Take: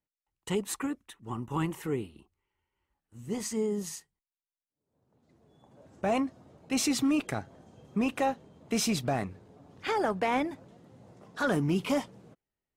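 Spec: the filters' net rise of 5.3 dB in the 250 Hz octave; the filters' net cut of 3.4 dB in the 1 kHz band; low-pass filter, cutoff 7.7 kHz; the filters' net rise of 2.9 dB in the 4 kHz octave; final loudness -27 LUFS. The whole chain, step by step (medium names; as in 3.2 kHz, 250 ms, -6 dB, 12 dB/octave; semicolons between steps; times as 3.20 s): low-pass 7.7 kHz; peaking EQ 250 Hz +6.5 dB; peaking EQ 1 kHz -5.5 dB; peaking EQ 4 kHz +4.5 dB; trim +1.5 dB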